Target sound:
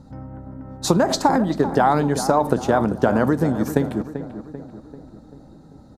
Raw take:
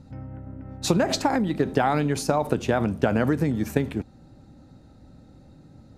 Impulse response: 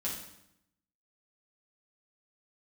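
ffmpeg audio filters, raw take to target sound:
-filter_complex "[0:a]equalizer=frequency=100:width_type=o:width=0.67:gain=-6,equalizer=frequency=1000:width_type=o:width=0.67:gain=5,equalizer=frequency=2500:width_type=o:width=0.67:gain=-11,asplit=2[link_01][link_02];[link_02]adelay=390,lowpass=frequency=1900:poles=1,volume=-11dB,asplit=2[link_03][link_04];[link_04]adelay=390,lowpass=frequency=1900:poles=1,volume=0.53,asplit=2[link_05][link_06];[link_06]adelay=390,lowpass=frequency=1900:poles=1,volume=0.53,asplit=2[link_07][link_08];[link_08]adelay=390,lowpass=frequency=1900:poles=1,volume=0.53,asplit=2[link_09][link_10];[link_10]adelay=390,lowpass=frequency=1900:poles=1,volume=0.53,asplit=2[link_11][link_12];[link_12]adelay=390,lowpass=frequency=1900:poles=1,volume=0.53[link_13];[link_03][link_05][link_07][link_09][link_11][link_13]amix=inputs=6:normalize=0[link_14];[link_01][link_14]amix=inputs=2:normalize=0,volume=4dB"

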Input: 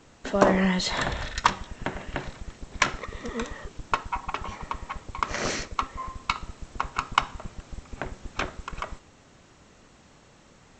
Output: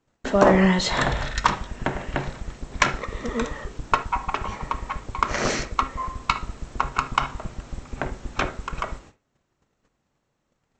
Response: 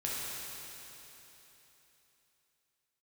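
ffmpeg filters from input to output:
-filter_complex "[0:a]agate=range=-25dB:threshold=-50dB:ratio=16:detection=peak,asplit=2[link_01][link_02];[1:a]atrim=start_sample=2205,atrim=end_sample=3528,lowpass=2400[link_03];[link_02][link_03]afir=irnorm=-1:irlink=0,volume=-7.5dB[link_04];[link_01][link_04]amix=inputs=2:normalize=0,alimiter=level_in=4dB:limit=-1dB:release=50:level=0:latency=1,volume=-1dB"

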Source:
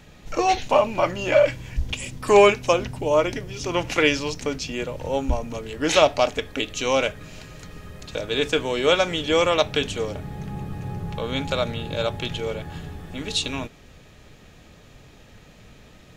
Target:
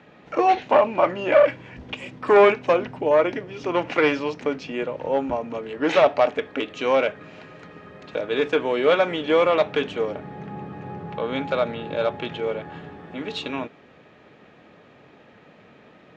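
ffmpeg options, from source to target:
ffmpeg -i in.wav -af "aeval=exprs='clip(val(0),-1,0.168)':channel_layout=same,highpass=230,lowpass=2100,volume=3dB" out.wav

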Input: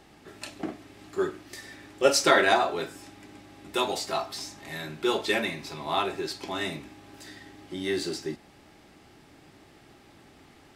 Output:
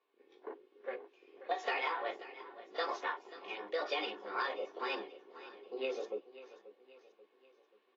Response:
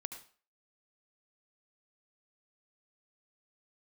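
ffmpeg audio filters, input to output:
-af "flanger=delay=16.5:depth=5.2:speed=0.93,afwtdn=0.01,lowpass=frequency=2800:width=0.5412,lowpass=frequency=2800:width=1.3066,aecho=1:1:3.7:0.32,acompressor=threshold=-30dB:ratio=20,highpass=frequency=260:width=0.5412,highpass=frequency=260:width=1.3066,aecho=1:1:722|1444|2166|2888:0.158|0.0745|0.035|0.0165,asetrate=59535,aresample=44100,dynaudnorm=framelen=250:gausssize=9:maxgain=5.5dB,volume=-6.5dB" -ar 22050 -c:a aac -b:a 24k

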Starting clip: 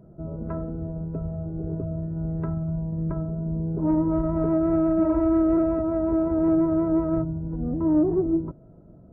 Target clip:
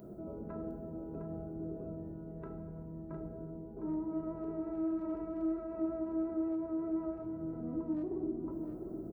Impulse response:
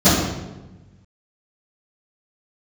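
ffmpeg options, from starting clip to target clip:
-filter_complex "[0:a]aemphasis=mode=production:type=75kf,asoftclip=type=hard:threshold=-14.5dB,areverse,acompressor=threshold=-34dB:ratio=6,areverse,alimiter=level_in=12.5dB:limit=-24dB:level=0:latency=1:release=26,volume=-12.5dB,lowshelf=frequency=180:width_type=q:width=1.5:gain=-10,aecho=1:1:708:0.422,asplit=2[link_01][link_02];[1:a]atrim=start_sample=2205,asetrate=27783,aresample=44100[link_03];[link_02][link_03]afir=irnorm=-1:irlink=0,volume=-33dB[link_04];[link_01][link_04]amix=inputs=2:normalize=0,volume=1dB"

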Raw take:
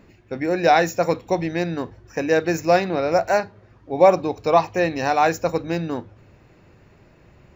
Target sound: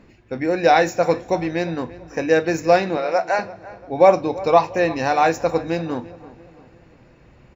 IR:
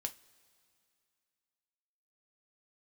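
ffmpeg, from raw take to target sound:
-filter_complex "[0:a]asettb=1/sr,asplit=3[link_01][link_02][link_03];[link_01]atrim=end=2.974[link_04];[link_02]atrim=start=2.97:end=3.39,asetpts=PTS-STARTPTS,afade=type=in:duration=0.004:curve=qsin,afade=type=out:start_time=0.416:duration=0.004:curve=qsin,highpass=510,lowpass=5600[link_05];[link_03]atrim=start=3.386[link_06];[link_04][link_05]acrossfade=duration=0.004:curve1=hsin:curve2=qsin[link_07];[link_07][link_06]acrossfade=duration=0.004:curve1=qsin:curve2=hsin,asplit=2[link_08][link_09];[link_09]adelay=342,lowpass=frequency=2500:poles=1,volume=-18dB,asplit=2[link_10][link_11];[link_11]adelay=342,lowpass=frequency=2500:poles=1,volume=0.45,asplit=2[link_12][link_13];[link_13]adelay=342,lowpass=frequency=2500:poles=1,volume=0.45,asplit=2[link_14][link_15];[link_15]adelay=342,lowpass=frequency=2500:poles=1,volume=0.45[link_16];[link_08][link_10][link_12][link_14][link_16]amix=inputs=5:normalize=0,asplit=2[link_17][link_18];[1:a]atrim=start_sample=2205,lowpass=8600[link_19];[link_18][link_19]afir=irnorm=-1:irlink=0,volume=4.5dB[link_20];[link_17][link_20]amix=inputs=2:normalize=0,volume=-6.5dB"

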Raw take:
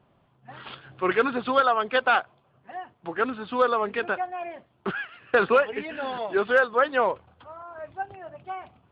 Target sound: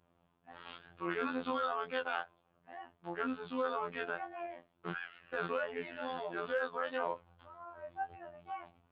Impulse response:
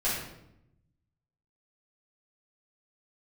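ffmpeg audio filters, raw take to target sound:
-af "flanger=delay=19.5:depth=5.2:speed=2.1,alimiter=limit=-21dB:level=0:latency=1:release=15,afftfilt=real='hypot(re,im)*cos(PI*b)':imag='0':win_size=2048:overlap=0.75,volume=-3dB"

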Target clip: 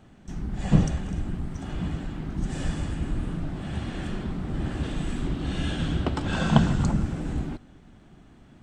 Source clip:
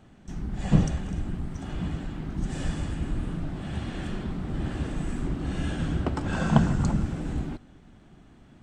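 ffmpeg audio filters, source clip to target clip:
ffmpeg -i in.wav -filter_complex "[0:a]asettb=1/sr,asplit=3[link_01][link_02][link_03];[link_01]atrim=end=4.834[link_04];[link_02]atrim=start=4.83:end=6.85,asetpts=PTS-STARTPTS,afade=type=in:duration=0.004:curve=qsin,afade=type=out:start_time=2.016:duration=0.004:curve=qsin,equalizer=frequency=3500:width_type=o:width=0.84:gain=7.5[link_05];[link_03]atrim=start=6.846[link_06];[link_04][link_05]acrossfade=duration=0.004:curve1=hsin:curve2=qsin[link_07];[link_07][link_06]acrossfade=duration=0.004:curve1=qsin:curve2=hsin,volume=1dB" out.wav

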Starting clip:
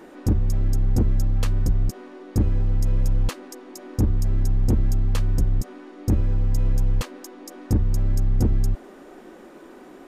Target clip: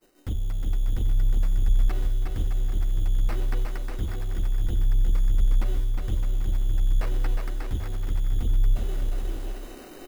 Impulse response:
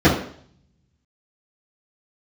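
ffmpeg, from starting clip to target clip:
-filter_complex "[0:a]equalizer=frequency=125:width_type=o:width=1:gain=-7,equalizer=frequency=250:width_type=o:width=1:gain=-10,equalizer=frequency=500:width_type=o:width=1:gain=-5,equalizer=frequency=1000:width_type=o:width=1:gain=-10,equalizer=frequency=2000:width_type=o:width=1:gain=-10,agate=range=-33dB:threshold=-46dB:ratio=3:detection=peak,acrossover=split=450|900[link_01][link_02][link_03];[link_03]asoftclip=type=tanh:threshold=-35dB[link_04];[link_01][link_02][link_04]amix=inputs=3:normalize=0,flanger=delay=1.5:depth=7.3:regen=71:speed=0.57:shape=triangular,areverse,acompressor=mode=upward:threshold=-26dB:ratio=2.5,areverse,acrusher=samples=13:mix=1:aa=0.000001,acrossover=split=3600[link_05][link_06];[link_06]acompressor=threshold=-57dB:ratio=4:attack=1:release=60[link_07];[link_05][link_07]amix=inputs=2:normalize=0,highshelf=frequency=5600:gain=11.5,aecho=1:1:360|612|788.4|911.9|998.3:0.631|0.398|0.251|0.158|0.1"

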